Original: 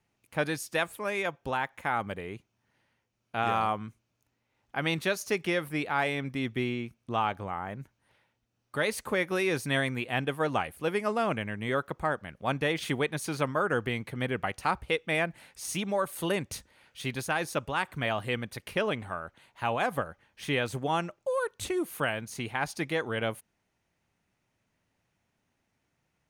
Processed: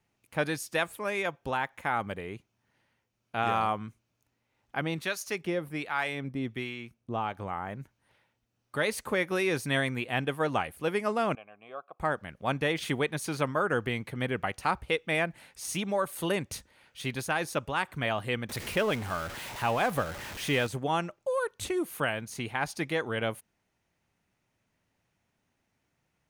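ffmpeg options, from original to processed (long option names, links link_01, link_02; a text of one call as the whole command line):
ffmpeg -i in.wav -filter_complex "[0:a]asettb=1/sr,asplit=3[link_01][link_02][link_03];[link_01]atrim=end=4.814[link_04];[link_02]atrim=start=4.81:end=7.38,asetpts=PTS-STARTPTS,afade=type=in:duration=0.004:curve=qsin,afade=type=out:start_time=2.566:duration=0.004:curve=qsin,acrossover=split=840[link_05][link_06];[link_05]aeval=exprs='val(0)*(1-0.7/2+0.7/2*cos(2*PI*1.3*n/s))':channel_layout=same[link_07];[link_06]aeval=exprs='val(0)*(1-0.7/2-0.7/2*cos(2*PI*1.3*n/s))':channel_layout=same[link_08];[link_07][link_08]amix=inputs=2:normalize=0[link_09];[link_03]atrim=start=7.376[link_10];[link_04][link_09]acrossfade=duration=0.004:curve1=hsin:curve2=qsin[link_11];[link_11][link_10]acrossfade=duration=0.004:curve1=qsin:curve2=hsin,asettb=1/sr,asplit=3[link_12][link_13][link_14];[link_12]atrim=end=11.354[link_15];[link_13]atrim=start=11.35:end=12,asetpts=PTS-STARTPTS,afade=type=in:duration=0.004:curve=qsin,afade=type=out:start_time=0.646:duration=0.004:curve=qsin,asplit=3[link_16][link_17][link_18];[link_16]bandpass=frequency=730:width_type=q:width=8,volume=0dB[link_19];[link_17]bandpass=frequency=1090:width_type=q:width=8,volume=-6dB[link_20];[link_18]bandpass=frequency=2440:width_type=q:width=8,volume=-9dB[link_21];[link_19][link_20][link_21]amix=inputs=3:normalize=0[link_22];[link_14]atrim=start=11.996[link_23];[link_15][link_22]acrossfade=duration=0.004:curve1=hsin:curve2=qsin[link_24];[link_24][link_23]acrossfade=duration=0.004:curve1=qsin:curve2=hsin,asettb=1/sr,asplit=3[link_25][link_26][link_27];[link_25]atrim=end=18.494[link_28];[link_26]atrim=start=18.49:end=20.67,asetpts=PTS-STARTPTS,afade=type=in:duration=0.004:curve=qsin,afade=type=out:start_time=2.176:duration=0.004:curve=qsin,aeval=exprs='val(0)+0.5*0.0178*sgn(val(0))':channel_layout=same[link_29];[link_27]atrim=start=20.666[link_30];[link_28][link_29]acrossfade=duration=0.004:curve1=hsin:curve2=qsin[link_31];[link_31][link_30]acrossfade=duration=0.004:curve1=qsin:curve2=hsin" out.wav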